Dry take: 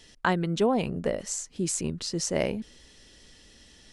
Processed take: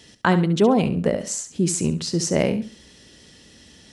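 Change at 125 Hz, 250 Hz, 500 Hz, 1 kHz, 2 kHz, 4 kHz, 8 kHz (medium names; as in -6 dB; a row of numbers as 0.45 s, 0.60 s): +9.5 dB, +9.0 dB, +6.5 dB, +5.5 dB, +5.0 dB, +5.0 dB, +5.0 dB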